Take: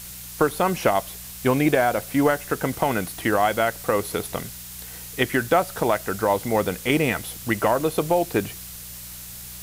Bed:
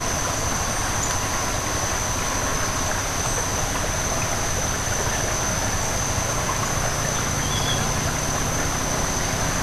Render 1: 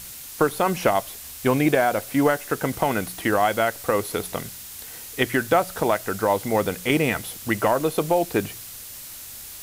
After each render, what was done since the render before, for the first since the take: de-hum 60 Hz, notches 3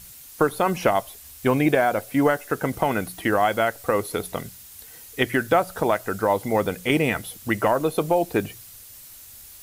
denoiser 8 dB, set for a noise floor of -39 dBFS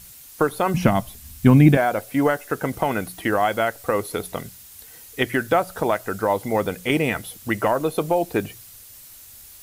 0.74–1.77 resonant low shelf 300 Hz +11.5 dB, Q 1.5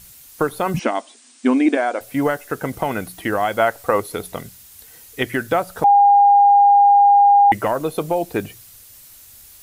0.79–2.01 brick-wall FIR band-pass 230–9600 Hz; 3.54–4 dynamic EQ 900 Hz, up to +7 dB, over -35 dBFS, Q 0.77; 5.84–7.52 bleep 809 Hz -8 dBFS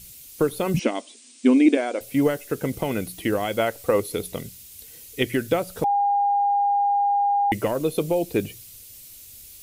band shelf 1100 Hz -9.5 dB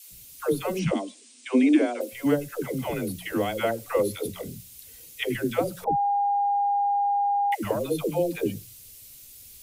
resonator 530 Hz, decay 0.37 s, mix 30%; dispersion lows, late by 0.127 s, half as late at 460 Hz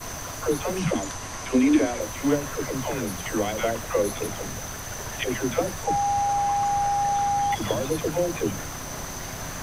add bed -11 dB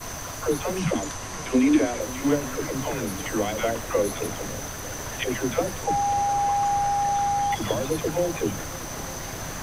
swung echo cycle 0.898 s, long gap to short 1.5:1, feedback 61%, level -19 dB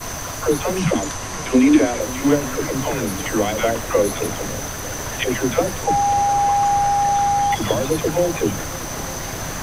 gain +6 dB

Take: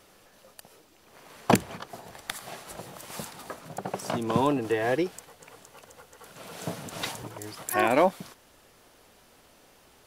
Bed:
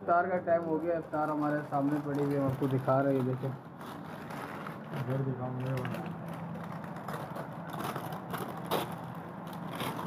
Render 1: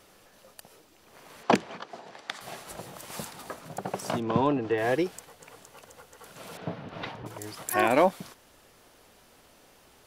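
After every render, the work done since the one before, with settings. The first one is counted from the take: 1.43–2.41 three-band isolator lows -20 dB, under 180 Hz, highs -24 dB, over 6400 Hz; 4.2–4.78 air absorption 170 m; 6.57–7.26 air absorption 320 m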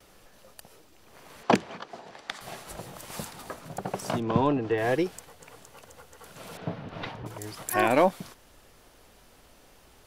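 gate with hold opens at -50 dBFS; low shelf 70 Hz +12 dB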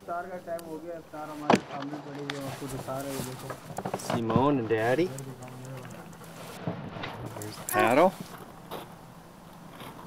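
add bed -7.5 dB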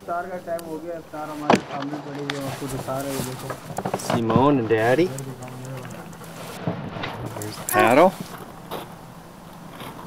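gain +7 dB; limiter -3 dBFS, peak gain reduction 3 dB

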